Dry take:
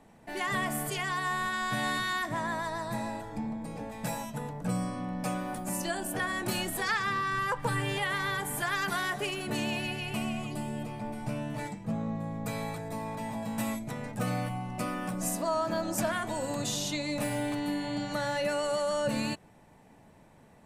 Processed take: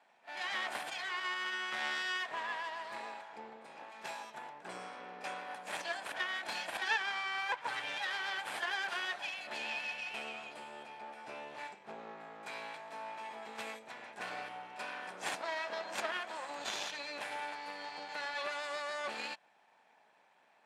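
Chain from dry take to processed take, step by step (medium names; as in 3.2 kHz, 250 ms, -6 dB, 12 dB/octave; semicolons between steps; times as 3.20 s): comb filter that takes the minimum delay 1.2 ms; tilt EQ +3.5 dB/octave; Chebyshev shaper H 3 -17 dB, 6 -12 dB, 8 -21 dB, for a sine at -10 dBFS; band-pass 380–2900 Hz; pre-echo 32 ms -15.5 dB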